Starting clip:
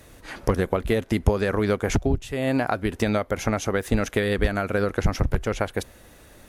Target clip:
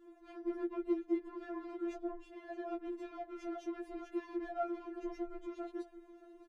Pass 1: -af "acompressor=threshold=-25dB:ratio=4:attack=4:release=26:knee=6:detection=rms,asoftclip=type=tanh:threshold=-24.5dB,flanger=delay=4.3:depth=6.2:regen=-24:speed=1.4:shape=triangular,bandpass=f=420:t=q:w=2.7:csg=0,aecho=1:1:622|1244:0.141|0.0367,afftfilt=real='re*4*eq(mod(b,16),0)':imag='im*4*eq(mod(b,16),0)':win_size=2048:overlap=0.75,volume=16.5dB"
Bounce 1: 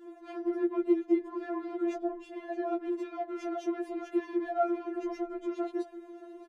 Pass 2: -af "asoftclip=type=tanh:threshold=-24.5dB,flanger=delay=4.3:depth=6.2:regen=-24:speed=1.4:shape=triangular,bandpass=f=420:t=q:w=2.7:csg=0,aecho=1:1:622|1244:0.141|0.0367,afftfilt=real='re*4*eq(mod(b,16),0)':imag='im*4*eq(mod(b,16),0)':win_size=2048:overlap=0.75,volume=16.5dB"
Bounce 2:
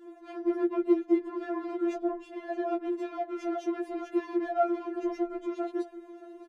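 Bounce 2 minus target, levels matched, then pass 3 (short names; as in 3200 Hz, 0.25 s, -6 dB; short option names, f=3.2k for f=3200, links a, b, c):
125 Hz band -9.0 dB
-af "asoftclip=type=tanh:threshold=-24.5dB,flanger=delay=4.3:depth=6.2:regen=-24:speed=1.4:shape=triangular,bandpass=f=160:t=q:w=2.7:csg=0,aecho=1:1:622|1244:0.141|0.0367,afftfilt=real='re*4*eq(mod(b,16),0)':imag='im*4*eq(mod(b,16),0)':win_size=2048:overlap=0.75,volume=16.5dB"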